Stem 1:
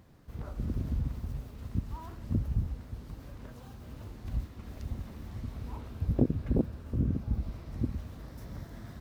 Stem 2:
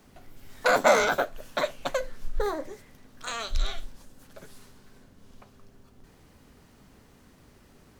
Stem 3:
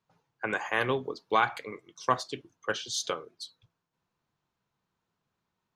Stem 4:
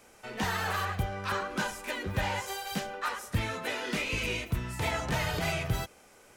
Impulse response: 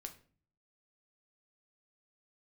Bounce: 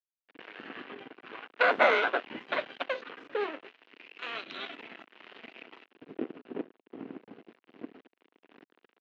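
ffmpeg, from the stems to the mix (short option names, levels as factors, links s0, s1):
-filter_complex "[0:a]volume=1.26,asplit=2[s0][s1];[s1]volume=0.631[s2];[1:a]adelay=950,volume=1.12,asplit=2[s3][s4];[s4]volume=0.112[s5];[2:a]alimiter=limit=0.188:level=0:latency=1:release=365,acontrast=86,volume=0.119,asplit=2[s6][s7];[s7]volume=0.501[s8];[3:a]highpass=f=720:p=1,alimiter=level_in=1.88:limit=0.0631:level=0:latency=1:release=14,volume=0.531,volume=0.531,asplit=2[s9][s10];[s10]volume=0.266[s11];[s0][s6]amix=inputs=2:normalize=0,acompressor=threshold=0.0158:ratio=2,volume=1[s12];[4:a]atrim=start_sample=2205[s13];[s2][s5][s8][s11]amix=inputs=4:normalize=0[s14];[s14][s13]afir=irnorm=-1:irlink=0[s15];[s3][s9][s12][s15]amix=inputs=4:normalize=0,aeval=exprs='sgn(val(0))*max(abs(val(0))-0.0211,0)':c=same,highpass=f=290:w=0.5412,highpass=f=290:w=1.3066,equalizer=f=580:t=q:w=4:g=-6,equalizer=f=850:t=q:w=4:g=-5,equalizer=f=1200:t=q:w=4:g=-3,equalizer=f=2800:t=q:w=4:g=5,lowpass=f=3100:w=0.5412,lowpass=f=3100:w=1.3066"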